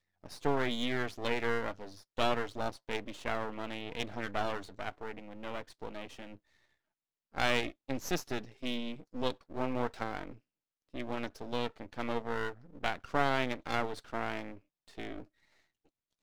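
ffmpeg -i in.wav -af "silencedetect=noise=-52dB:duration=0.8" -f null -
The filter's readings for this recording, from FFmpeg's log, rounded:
silence_start: 6.37
silence_end: 7.34 | silence_duration: 0.97
silence_start: 15.25
silence_end: 16.22 | silence_duration: 0.97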